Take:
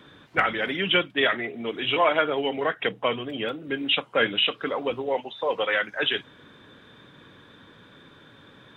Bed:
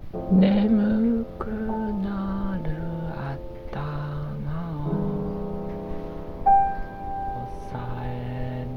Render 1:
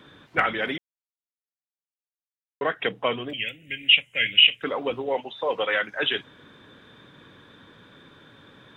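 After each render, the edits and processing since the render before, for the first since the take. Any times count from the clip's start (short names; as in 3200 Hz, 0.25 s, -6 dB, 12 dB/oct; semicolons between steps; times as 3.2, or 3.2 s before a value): 0.78–2.61 mute; 3.33–4.63 EQ curve 100 Hz 0 dB, 220 Hz -11 dB, 370 Hz -19 dB, 560 Hz -14 dB, 1200 Hz -28 dB, 2000 Hz +7 dB, 2900 Hz +9 dB, 4300 Hz -18 dB, 6800 Hz +6 dB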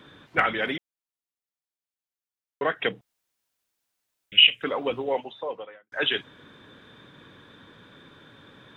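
3.01–4.32 room tone; 5.05–5.92 studio fade out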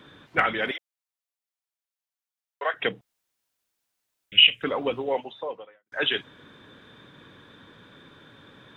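0.71–2.74 HPF 550 Hz 24 dB/oct; 4.35–4.9 low shelf 150 Hz +8 dB; 5.44–5.86 fade out, to -22.5 dB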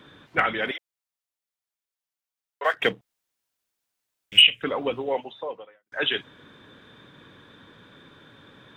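2.64–4.42 sample leveller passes 1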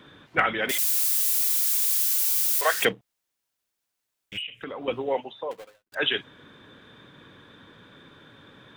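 0.69–2.85 switching spikes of -18 dBFS; 4.36–4.88 compressor, threshold -32 dBFS; 5.51–5.95 switching dead time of 0.22 ms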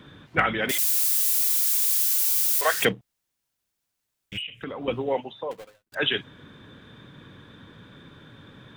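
tone controls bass +8 dB, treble +1 dB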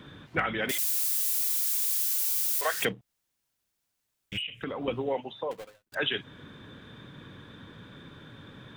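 compressor 2:1, threshold -29 dBFS, peak gain reduction 7.5 dB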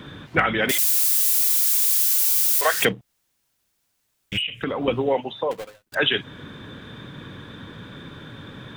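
gain +8.5 dB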